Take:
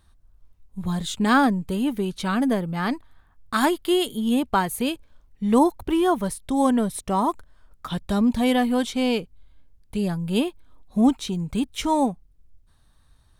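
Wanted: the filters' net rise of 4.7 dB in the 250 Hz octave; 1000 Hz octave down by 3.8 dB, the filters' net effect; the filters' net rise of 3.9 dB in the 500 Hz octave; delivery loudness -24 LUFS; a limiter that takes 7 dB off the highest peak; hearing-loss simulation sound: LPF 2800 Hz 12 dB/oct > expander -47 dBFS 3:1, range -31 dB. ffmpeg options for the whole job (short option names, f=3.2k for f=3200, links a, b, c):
-af "equalizer=f=250:t=o:g=4.5,equalizer=f=500:t=o:g=5,equalizer=f=1k:t=o:g=-7,alimiter=limit=-10.5dB:level=0:latency=1,lowpass=2.8k,agate=range=-31dB:threshold=-47dB:ratio=3,volume=-2.5dB"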